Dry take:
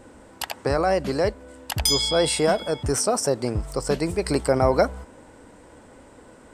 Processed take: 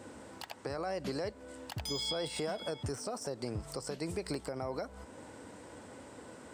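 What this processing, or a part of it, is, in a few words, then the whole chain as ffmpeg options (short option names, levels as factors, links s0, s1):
broadcast voice chain: -af "highpass=f=75:w=0.5412,highpass=f=75:w=1.3066,deesser=0.6,acompressor=threshold=0.0631:ratio=5,equalizer=f=4900:t=o:w=1.5:g=3.5,alimiter=limit=0.0631:level=0:latency=1:release=438,volume=0.794"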